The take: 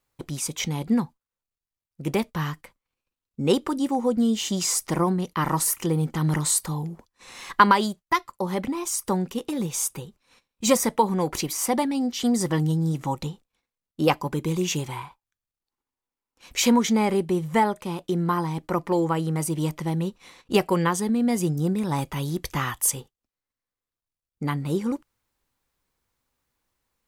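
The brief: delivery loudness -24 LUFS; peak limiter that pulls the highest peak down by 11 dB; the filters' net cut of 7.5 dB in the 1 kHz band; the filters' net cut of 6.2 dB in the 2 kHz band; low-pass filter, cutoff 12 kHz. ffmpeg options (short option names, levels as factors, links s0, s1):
-af "lowpass=12000,equalizer=f=1000:t=o:g=-7.5,equalizer=f=2000:t=o:g=-5.5,volume=1.58,alimiter=limit=0.2:level=0:latency=1"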